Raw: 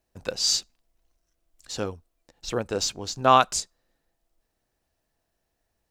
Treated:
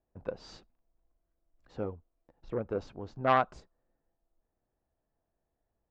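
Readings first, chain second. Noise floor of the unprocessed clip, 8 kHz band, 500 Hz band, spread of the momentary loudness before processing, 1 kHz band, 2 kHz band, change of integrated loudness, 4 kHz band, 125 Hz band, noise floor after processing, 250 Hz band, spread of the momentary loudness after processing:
−79 dBFS, below −35 dB, −6.0 dB, 17 LU, −8.5 dB, −5.5 dB, −8.5 dB, −23.5 dB, −5.0 dB, −85 dBFS, −5.5 dB, 21 LU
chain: low-pass filter 1,100 Hz 12 dB per octave
saturating transformer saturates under 970 Hz
level −4 dB

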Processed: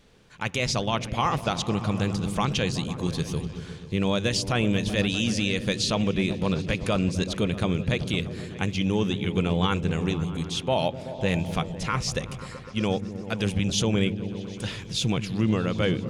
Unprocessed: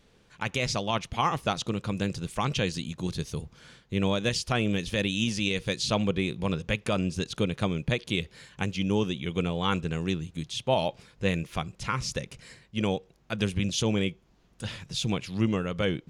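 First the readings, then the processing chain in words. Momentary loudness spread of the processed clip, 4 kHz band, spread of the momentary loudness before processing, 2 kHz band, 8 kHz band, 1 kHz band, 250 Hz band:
7 LU, +2.5 dB, 8 LU, +2.0 dB, +3.5 dB, +2.0 dB, +3.5 dB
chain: brickwall limiter −17.5 dBFS, peak gain reduction 4.5 dB
on a send: echo whose low-pass opens from repeat to repeat 126 ms, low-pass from 200 Hz, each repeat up 1 octave, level −6 dB
on the sum: level +3.5 dB

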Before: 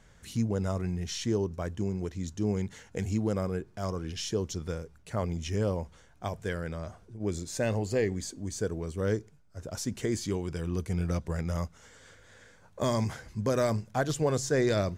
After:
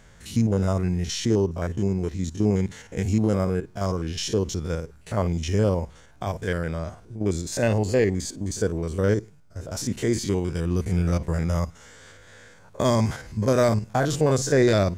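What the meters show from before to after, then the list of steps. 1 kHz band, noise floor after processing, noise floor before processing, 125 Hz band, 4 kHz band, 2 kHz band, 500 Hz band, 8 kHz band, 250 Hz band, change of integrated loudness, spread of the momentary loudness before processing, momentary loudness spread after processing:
+6.5 dB, −51 dBFS, −58 dBFS, +7.5 dB, +6.5 dB, +6.5 dB, +7.0 dB, +6.0 dB, +7.5 dB, +7.0 dB, 9 LU, 9 LU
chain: spectrum averaged block by block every 50 ms
level +8 dB

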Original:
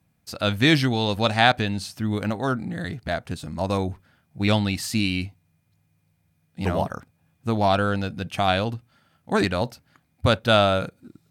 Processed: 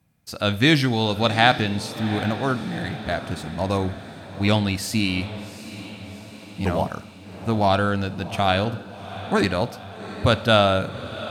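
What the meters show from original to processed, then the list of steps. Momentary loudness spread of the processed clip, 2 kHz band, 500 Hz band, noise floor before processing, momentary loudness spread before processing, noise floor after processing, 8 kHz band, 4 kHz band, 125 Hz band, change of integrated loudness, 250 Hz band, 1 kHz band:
19 LU, +1.5 dB, +1.5 dB, −68 dBFS, 13 LU, −42 dBFS, +1.5 dB, +1.5 dB, +1.5 dB, +1.0 dB, +1.5 dB, +1.5 dB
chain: feedback delay with all-pass diffusion 764 ms, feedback 57%, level −13.5 dB
four-comb reverb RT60 0.75 s, combs from 28 ms, DRR 16 dB
level +1 dB

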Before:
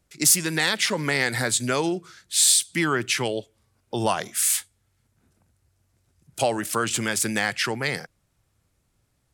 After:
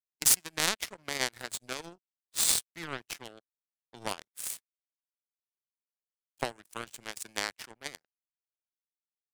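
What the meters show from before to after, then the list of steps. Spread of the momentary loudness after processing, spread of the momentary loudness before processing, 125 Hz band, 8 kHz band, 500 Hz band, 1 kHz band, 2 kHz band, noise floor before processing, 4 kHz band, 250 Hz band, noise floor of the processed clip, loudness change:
18 LU, 10 LU, −18.5 dB, −9.0 dB, −15.5 dB, −12.0 dB, −12.5 dB, −70 dBFS, −9.0 dB, −18.5 dB, below −85 dBFS, −8.5 dB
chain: power curve on the samples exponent 3
level +4 dB

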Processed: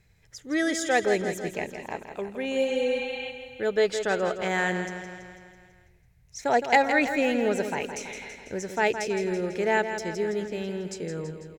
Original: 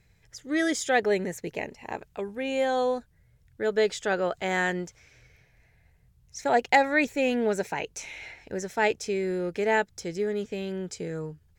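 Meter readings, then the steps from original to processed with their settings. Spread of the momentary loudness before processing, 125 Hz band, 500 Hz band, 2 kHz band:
13 LU, +1.0 dB, +1.0 dB, +1.0 dB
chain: healed spectral selection 0:02.59–0:03.28, 620–4,500 Hz before
on a send: repeating echo 165 ms, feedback 59%, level −9 dB

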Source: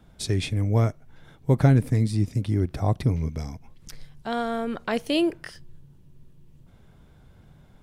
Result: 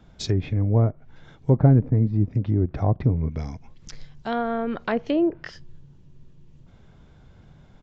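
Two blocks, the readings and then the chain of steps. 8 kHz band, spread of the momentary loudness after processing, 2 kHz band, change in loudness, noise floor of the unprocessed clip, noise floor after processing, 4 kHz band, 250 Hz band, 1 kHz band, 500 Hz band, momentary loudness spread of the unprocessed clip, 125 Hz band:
can't be measured, 16 LU, −1.5 dB, +2.0 dB, −54 dBFS, −52 dBFS, −5.5 dB, +2.0 dB, +1.0 dB, +1.5 dB, 16 LU, +2.0 dB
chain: treble cut that deepens with the level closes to 860 Hz, closed at −19.5 dBFS
downsampling to 16,000 Hz
level +2 dB

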